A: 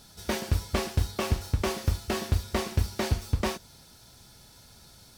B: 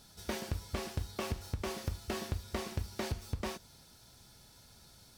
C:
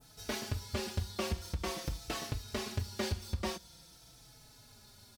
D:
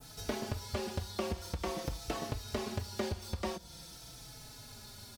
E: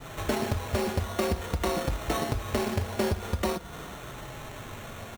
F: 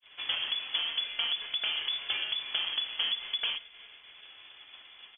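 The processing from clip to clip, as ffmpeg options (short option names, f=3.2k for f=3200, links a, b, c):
-af "acompressor=threshold=-27dB:ratio=4,volume=-5.5dB"
-filter_complex "[0:a]adynamicequalizer=threshold=0.00126:dfrequency=4500:dqfactor=0.81:tfrequency=4500:tqfactor=0.81:attack=5:release=100:ratio=0.375:range=2:mode=boostabove:tftype=bell,asplit=2[a][b];[b]adelay=4.1,afreqshift=-0.47[c];[a][c]amix=inputs=2:normalize=1,volume=3.5dB"
-filter_complex "[0:a]acrossover=split=450|1000[a][b][c];[a]acompressor=threshold=-44dB:ratio=4[d];[b]acompressor=threshold=-46dB:ratio=4[e];[c]acompressor=threshold=-53dB:ratio=4[f];[d][e][f]amix=inputs=3:normalize=0,volume=7.5dB"
-filter_complex "[0:a]asplit=2[a][b];[b]alimiter=level_in=5dB:limit=-24dB:level=0:latency=1:release=24,volume=-5dB,volume=-1.5dB[c];[a][c]amix=inputs=2:normalize=0,acrusher=samples=9:mix=1:aa=0.000001,volume=4.5dB"
-af "lowpass=f=3k:t=q:w=0.5098,lowpass=f=3k:t=q:w=0.6013,lowpass=f=3k:t=q:w=0.9,lowpass=f=3k:t=q:w=2.563,afreqshift=-3500,agate=range=-33dB:threshold=-34dB:ratio=3:detection=peak,volume=-4dB"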